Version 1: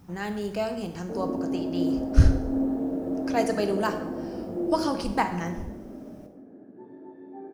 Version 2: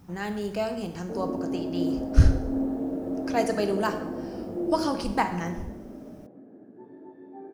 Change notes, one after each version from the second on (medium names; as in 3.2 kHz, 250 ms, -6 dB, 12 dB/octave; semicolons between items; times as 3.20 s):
background: send off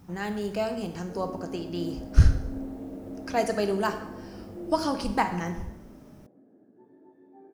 background -9.0 dB